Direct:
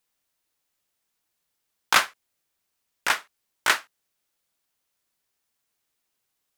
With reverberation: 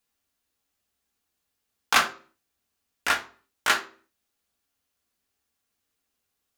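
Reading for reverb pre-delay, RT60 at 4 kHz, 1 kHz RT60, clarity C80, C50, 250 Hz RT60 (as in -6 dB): 3 ms, 0.35 s, 0.40 s, 17.0 dB, 13.0 dB, 0.50 s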